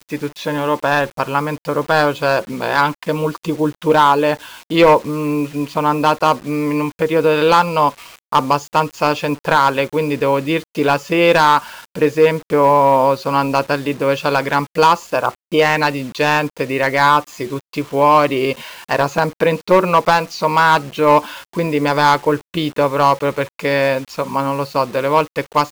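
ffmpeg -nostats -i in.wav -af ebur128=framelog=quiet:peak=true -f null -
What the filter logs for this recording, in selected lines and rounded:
Integrated loudness:
  I:         -16.1 LUFS
  Threshold: -26.2 LUFS
Loudness range:
  LRA:         2.6 LU
  Threshold: -36.1 LUFS
  LRA low:   -17.3 LUFS
  LRA high:  -14.7 LUFS
True peak:
  Peak:       -3.8 dBFS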